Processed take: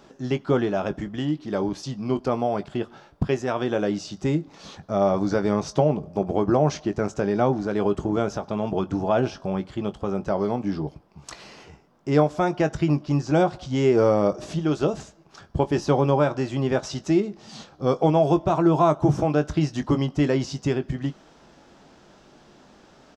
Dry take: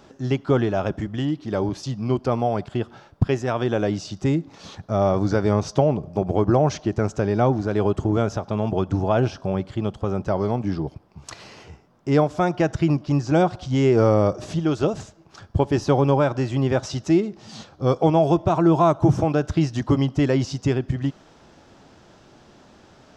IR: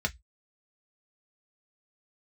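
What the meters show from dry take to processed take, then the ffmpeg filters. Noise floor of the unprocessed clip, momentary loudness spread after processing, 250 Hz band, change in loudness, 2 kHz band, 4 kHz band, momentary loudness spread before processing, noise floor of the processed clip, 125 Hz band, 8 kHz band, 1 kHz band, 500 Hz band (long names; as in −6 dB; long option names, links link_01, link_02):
−52 dBFS, 11 LU, −1.5 dB, −2.0 dB, −1.0 dB, −1.0 dB, 9 LU, −54 dBFS, −4.0 dB, −1.0 dB, −1.5 dB, −1.0 dB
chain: -filter_complex "[0:a]equalizer=frequency=100:width_type=o:width=0.33:gain=-13.5,asplit=2[link_01][link_02];[link_02]adelay=20,volume=-11dB[link_03];[link_01][link_03]amix=inputs=2:normalize=0,volume=-1.5dB"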